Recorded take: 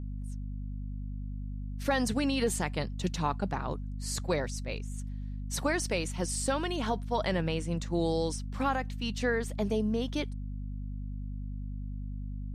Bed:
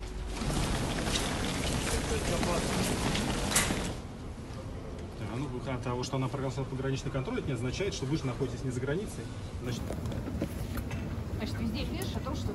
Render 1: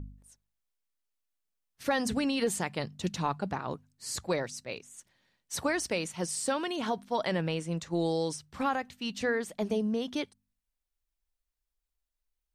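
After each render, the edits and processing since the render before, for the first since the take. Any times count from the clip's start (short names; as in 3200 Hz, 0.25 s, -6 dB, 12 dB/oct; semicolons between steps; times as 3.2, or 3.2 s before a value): de-hum 50 Hz, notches 5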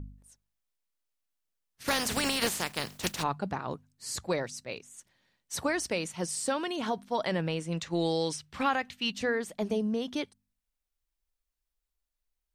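1.87–3.22 spectral contrast lowered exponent 0.42; 7.72–9.12 bell 2700 Hz +7.5 dB 1.8 oct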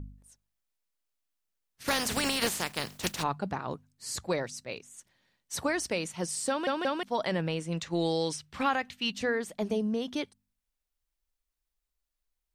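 6.49 stutter in place 0.18 s, 3 plays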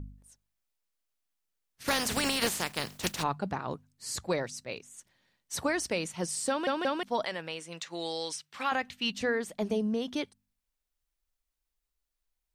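7.25–8.72 HPF 990 Hz 6 dB/oct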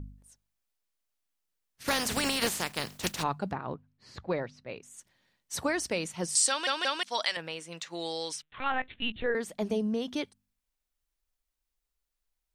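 3.53–4.83 air absorption 310 m; 6.35–7.37 weighting filter ITU-R 468; 8.42–9.35 LPC vocoder at 8 kHz pitch kept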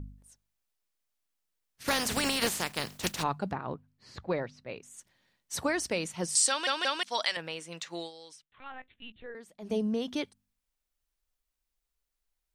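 7.98–9.75 dip -14.5 dB, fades 0.13 s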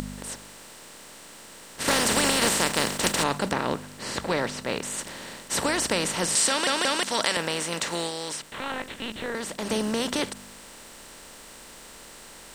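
per-bin compression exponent 0.4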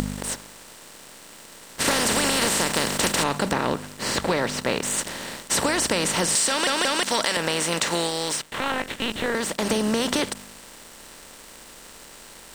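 sample leveller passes 2; compressor, threshold -19 dBFS, peak gain reduction 7 dB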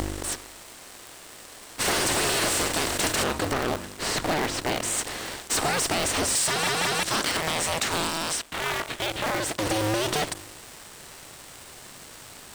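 cycle switcher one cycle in 2, inverted; soft clip -18.5 dBFS, distortion -15 dB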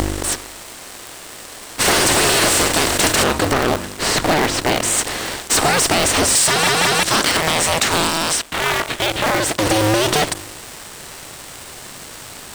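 gain +9.5 dB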